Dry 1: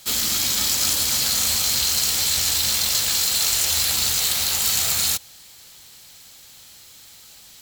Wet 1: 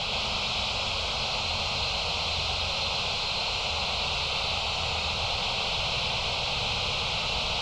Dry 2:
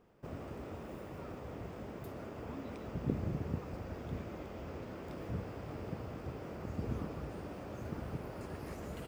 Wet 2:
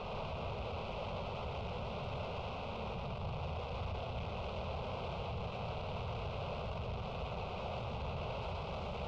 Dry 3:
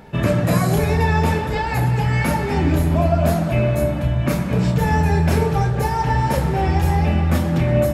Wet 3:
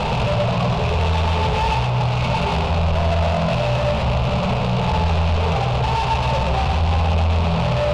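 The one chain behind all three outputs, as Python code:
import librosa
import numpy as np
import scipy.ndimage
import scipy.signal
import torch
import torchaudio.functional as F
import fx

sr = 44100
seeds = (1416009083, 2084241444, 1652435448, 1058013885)

p1 = np.sign(x) * np.sqrt(np.mean(np.square(x)))
p2 = scipy.signal.sosfilt(scipy.signal.butter(4, 3600.0, 'lowpass', fs=sr, output='sos'), p1)
p3 = fx.peak_eq(p2, sr, hz=2600.0, db=7.0, octaves=0.27)
p4 = fx.fixed_phaser(p3, sr, hz=730.0, stages=4)
p5 = 10.0 ** (-20.5 / 20.0) * np.tanh(p4 / 10.0 ** (-20.5 / 20.0))
p6 = p5 + fx.echo_single(p5, sr, ms=120, db=-4.0, dry=0)
y = p6 * 10.0 ** (3.5 / 20.0)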